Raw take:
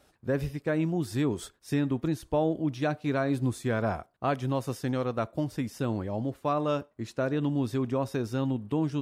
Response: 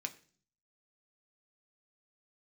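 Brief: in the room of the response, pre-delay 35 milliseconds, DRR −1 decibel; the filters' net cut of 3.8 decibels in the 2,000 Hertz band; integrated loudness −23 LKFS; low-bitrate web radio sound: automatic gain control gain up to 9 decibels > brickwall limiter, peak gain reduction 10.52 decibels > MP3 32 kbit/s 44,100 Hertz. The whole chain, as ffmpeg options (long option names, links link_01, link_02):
-filter_complex "[0:a]equalizer=frequency=2000:width_type=o:gain=-5.5,asplit=2[link_01][link_02];[1:a]atrim=start_sample=2205,adelay=35[link_03];[link_02][link_03]afir=irnorm=-1:irlink=0,volume=1.5dB[link_04];[link_01][link_04]amix=inputs=2:normalize=0,dynaudnorm=maxgain=9dB,alimiter=limit=-23.5dB:level=0:latency=1,volume=10dB" -ar 44100 -c:a libmp3lame -b:a 32k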